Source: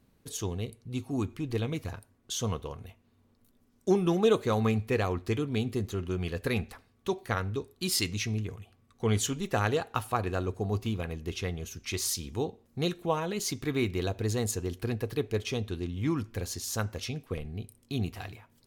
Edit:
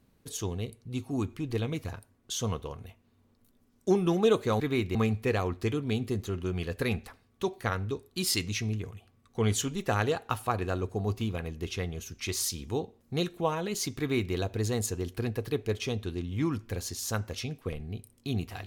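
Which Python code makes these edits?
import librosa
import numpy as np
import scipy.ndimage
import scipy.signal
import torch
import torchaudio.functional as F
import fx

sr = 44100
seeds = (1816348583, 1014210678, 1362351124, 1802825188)

y = fx.edit(x, sr, fx.duplicate(start_s=13.64, length_s=0.35, to_s=4.6), tone=tone)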